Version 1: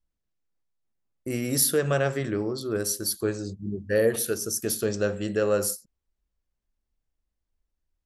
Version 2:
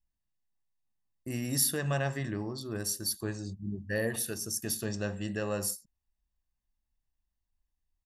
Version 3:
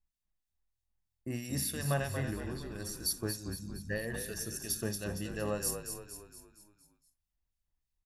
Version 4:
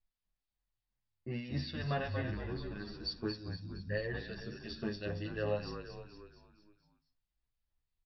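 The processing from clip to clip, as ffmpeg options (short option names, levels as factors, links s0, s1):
-af "aecho=1:1:1.1:0.57,volume=0.501"
-filter_complex "[0:a]acrossover=split=2400[s0][s1];[s0]aeval=exprs='val(0)*(1-0.7/2+0.7/2*cos(2*PI*3.1*n/s))':c=same[s2];[s1]aeval=exprs='val(0)*(1-0.7/2-0.7/2*cos(2*PI*3.1*n/s))':c=same[s3];[s2][s3]amix=inputs=2:normalize=0,asplit=2[s4][s5];[s5]asplit=6[s6][s7][s8][s9][s10][s11];[s6]adelay=232,afreqshift=-42,volume=0.422[s12];[s7]adelay=464,afreqshift=-84,volume=0.211[s13];[s8]adelay=696,afreqshift=-126,volume=0.106[s14];[s9]adelay=928,afreqshift=-168,volume=0.0525[s15];[s10]adelay=1160,afreqshift=-210,volume=0.0263[s16];[s11]adelay=1392,afreqshift=-252,volume=0.0132[s17];[s12][s13][s14][s15][s16][s17]amix=inputs=6:normalize=0[s18];[s4][s18]amix=inputs=2:normalize=0"
-filter_complex "[0:a]volume=12.6,asoftclip=hard,volume=0.0794,aresample=11025,aresample=44100,asplit=2[s0][s1];[s1]adelay=9.7,afreqshift=0.59[s2];[s0][s2]amix=inputs=2:normalize=1,volume=1.26"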